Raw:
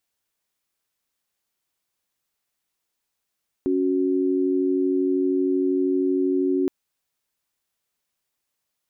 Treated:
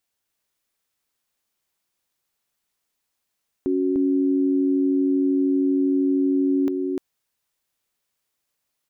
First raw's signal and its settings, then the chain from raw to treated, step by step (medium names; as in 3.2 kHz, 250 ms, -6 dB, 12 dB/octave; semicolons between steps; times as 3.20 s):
chord C#4/F#4 sine, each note -21.5 dBFS 3.02 s
delay 299 ms -3.5 dB